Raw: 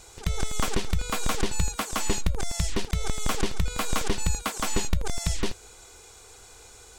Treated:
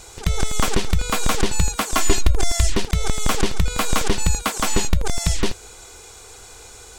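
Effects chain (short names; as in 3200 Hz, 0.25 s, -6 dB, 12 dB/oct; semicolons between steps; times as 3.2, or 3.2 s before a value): 1.93–2.72 comb 2.9 ms, depth 72%; in parallel at -5.5 dB: soft clip -14.5 dBFS, distortion -18 dB; on the sum: gain +3.5 dB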